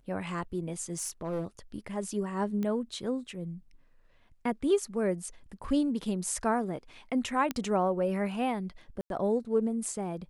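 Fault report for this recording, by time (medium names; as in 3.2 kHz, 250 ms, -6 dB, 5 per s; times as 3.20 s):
0.90–1.47 s: clipped -28.5 dBFS
2.63 s: pop -22 dBFS
7.51 s: pop -16 dBFS
9.01–9.10 s: dropout 92 ms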